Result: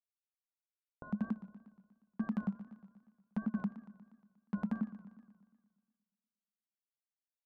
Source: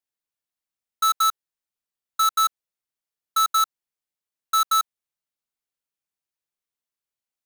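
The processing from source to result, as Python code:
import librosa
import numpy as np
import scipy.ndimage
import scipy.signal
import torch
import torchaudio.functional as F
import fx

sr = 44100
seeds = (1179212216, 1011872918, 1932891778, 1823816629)

y = fx.envelope_sharpen(x, sr, power=2.0)
y = fx.schmitt(y, sr, flips_db=-33.5)
y = scipy.signal.sosfilt(scipy.signal.cheby2(4, 70, 2600.0, 'lowpass', fs=sr, output='sos'), y)
y = 10.0 ** (-33.5 / 20.0) * (np.abs((y / 10.0 ** (-33.5 / 20.0) + 3.0) % 4.0 - 2.0) - 1.0)
y = y * np.sin(2.0 * np.pi * 210.0 * np.arange(len(y)) / sr)
y = fx.wow_flutter(y, sr, seeds[0], rate_hz=2.1, depth_cents=77.0)
y = fx.echo_warbled(y, sr, ms=119, feedback_pct=60, rate_hz=2.8, cents=137, wet_db=-14.5)
y = y * librosa.db_to_amplitude(9.0)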